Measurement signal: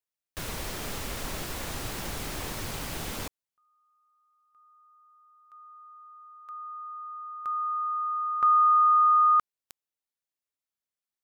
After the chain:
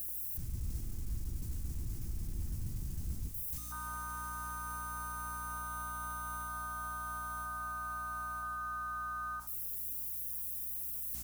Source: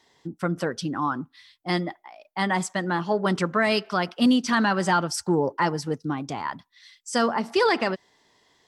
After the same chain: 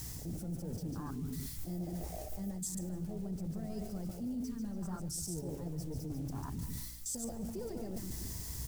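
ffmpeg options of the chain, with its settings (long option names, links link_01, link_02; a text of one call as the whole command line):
ffmpeg -i in.wav -filter_complex "[0:a]aeval=exprs='val(0)+0.5*0.0447*sgn(val(0))':channel_layout=same,acrossover=split=130[link_01][link_02];[link_02]acompressor=threshold=-42dB:ratio=2.5:attack=1.9:release=34:knee=2.83:detection=peak[link_03];[link_01][link_03]amix=inputs=2:normalize=0,aecho=1:1:144|288|432|576:0.531|0.165|0.051|0.0158,aexciter=amount=9.2:drive=2.9:freq=4900,lowshelf=frequency=350:gain=9,bandreject=frequency=145.6:width_type=h:width=4,bandreject=frequency=291.2:width_type=h:width=4,bandreject=frequency=436.8:width_type=h:width=4,bandreject=frequency=582.4:width_type=h:width=4,bandreject=frequency=728:width_type=h:width=4,bandreject=frequency=873.6:width_type=h:width=4,asoftclip=type=hard:threshold=-18dB,afwtdn=0.0398,acrusher=bits=7:mix=0:aa=0.5,aeval=exprs='val(0)+0.00501*(sin(2*PI*60*n/s)+sin(2*PI*2*60*n/s)/2+sin(2*PI*3*60*n/s)/3+sin(2*PI*4*60*n/s)/4+sin(2*PI*5*60*n/s)/5)':channel_layout=same,areverse,acompressor=threshold=-32dB:ratio=6:attack=2.7:release=258:knee=1:detection=rms,areverse,equalizer=frequency=68:width_type=o:width=1.1:gain=4,volume=-3.5dB" out.wav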